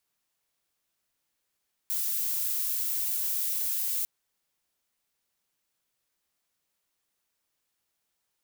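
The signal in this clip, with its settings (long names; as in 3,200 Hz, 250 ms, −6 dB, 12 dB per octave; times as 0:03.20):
noise violet, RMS −29.5 dBFS 2.15 s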